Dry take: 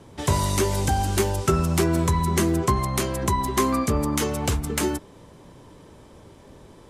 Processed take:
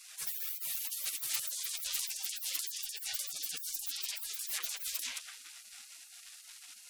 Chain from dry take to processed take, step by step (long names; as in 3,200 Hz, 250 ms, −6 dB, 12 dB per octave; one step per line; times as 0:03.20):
feedback echo with a low-pass in the loop 216 ms, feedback 16%, low-pass 2,300 Hz, level −5 dB
in parallel at +1 dB: downward compressor 10 to 1, threshold −30 dBFS, peak gain reduction 15 dB
on the sum: harmonic generator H 3 −12 dB, 7 −9 dB, 8 −9 dB, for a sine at −6.5 dBFS
gate on every frequency bin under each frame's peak −30 dB weak